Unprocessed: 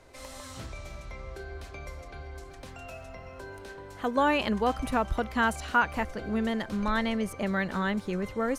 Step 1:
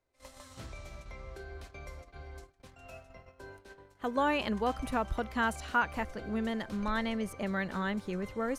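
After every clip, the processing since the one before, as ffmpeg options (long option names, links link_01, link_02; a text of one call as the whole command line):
ffmpeg -i in.wav -af "agate=range=-22dB:threshold=-42dB:ratio=16:detection=peak,volume=-4.5dB" out.wav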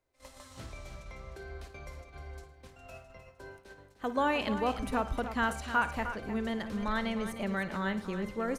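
ffmpeg -i in.wav -af "aecho=1:1:56|111|306:0.188|0.112|0.299" out.wav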